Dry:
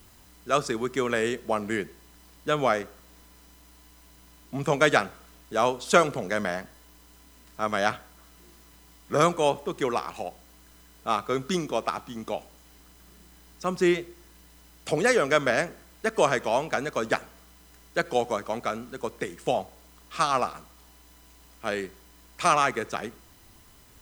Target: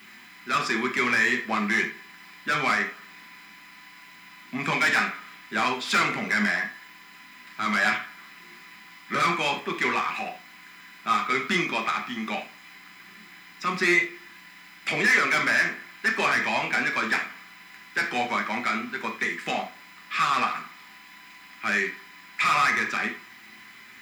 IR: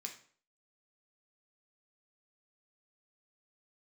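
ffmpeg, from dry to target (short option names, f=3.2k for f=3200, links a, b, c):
-filter_complex "[0:a]equalizer=f=250:t=o:w=1:g=7,equalizer=f=500:t=o:w=1:g=-10,equalizer=f=2k:t=o:w=1:g=10,equalizer=f=8k:t=o:w=1:g=-9,asplit=2[a][b];[b]highpass=f=720:p=1,volume=27dB,asoftclip=type=tanh:threshold=-1.5dB[c];[a][c]amix=inputs=2:normalize=0,lowpass=f=3.9k:p=1,volume=-6dB[d];[1:a]atrim=start_sample=2205,afade=t=out:st=0.15:d=0.01,atrim=end_sample=7056[e];[d][e]afir=irnorm=-1:irlink=0,volume=-7.5dB"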